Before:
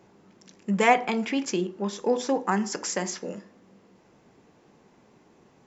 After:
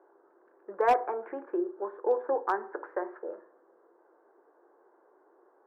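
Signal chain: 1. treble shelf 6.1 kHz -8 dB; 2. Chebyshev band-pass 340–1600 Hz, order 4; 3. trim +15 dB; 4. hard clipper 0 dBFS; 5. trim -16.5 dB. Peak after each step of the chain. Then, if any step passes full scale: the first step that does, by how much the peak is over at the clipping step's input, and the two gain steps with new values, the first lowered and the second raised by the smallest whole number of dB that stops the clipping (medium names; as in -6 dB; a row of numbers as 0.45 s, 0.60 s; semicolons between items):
-5.0 dBFS, -9.0 dBFS, +6.0 dBFS, 0.0 dBFS, -16.5 dBFS; step 3, 6.0 dB; step 3 +9 dB, step 5 -10.5 dB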